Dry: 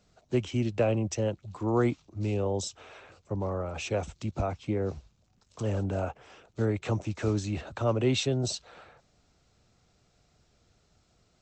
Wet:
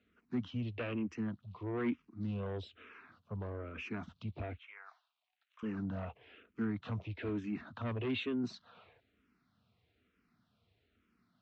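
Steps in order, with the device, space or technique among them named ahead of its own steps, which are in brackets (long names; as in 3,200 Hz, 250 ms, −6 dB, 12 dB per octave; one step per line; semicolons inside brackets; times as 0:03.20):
0:04.58–0:05.63: elliptic high-pass filter 720 Hz, stop band 60 dB
barber-pole phaser into a guitar amplifier (frequency shifter mixed with the dry sound −1.1 Hz; soft clipping −26.5 dBFS, distortion −12 dB; loudspeaker in its box 100–3,400 Hz, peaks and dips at 140 Hz −8 dB, 240 Hz +6 dB, 360 Hz −4 dB, 560 Hz −10 dB, 810 Hz −10 dB)
level −1.5 dB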